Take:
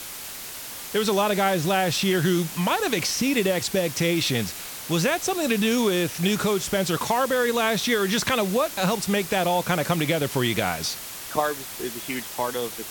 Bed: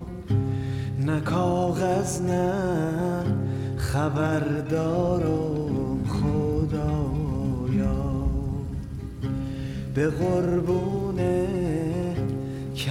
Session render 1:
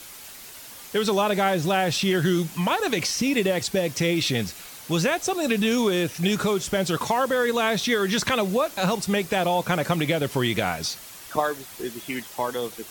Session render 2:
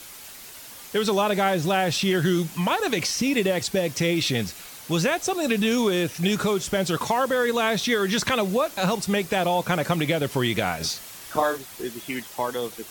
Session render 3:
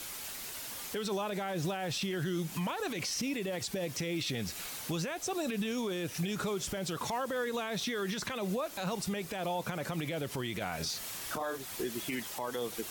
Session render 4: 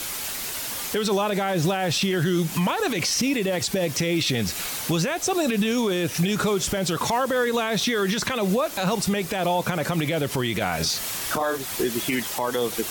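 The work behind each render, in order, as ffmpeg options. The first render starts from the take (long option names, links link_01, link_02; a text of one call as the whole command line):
ffmpeg -i in.wav -af "afftdn=noise_reduction=7:noise_floor=-37" out.wav
ffmpeg -i in.wav -filter_complex "[0:a]asettb=1/sr,asplit=3[link_01][link_02][link_03];[link_01]atrim=end=10.774[link_04];[link_02]atrim=start=10.77:end=11.58,asetpts=PTS-STARTPTS,afade=type=in:duration=0.004:curve=qsin,afade=type=out:start_time=0.806:duration=0.004:curve=qsin,asplit=2[link_05][link_06];[link_06]adelay=37,volume=-4.5dB[link_07];[link_05][link_07]amix=inputs=2:normalize=0,atrim=end_sample=35721[link_08];[link_03]atrim=start=11.576[link_09];[link_04][link_08]acrossfade=duration=0.004:curve1=hsin:curve2=qsin[link_10];[link_10][link_09]acrossfade=duration=0.004:curve1=qsin:curve2=hsin" out.wav
ffmpeg -i in.wav -af "acompressor=threshold=-29dB:ratio=6,alimiter=level_in=2dB:limit=-24dB:level=0:latency=1:release=36,volume=-2dB" out.wav
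ffmpeg -i in.wav -af "volume=11.5dB" out.wav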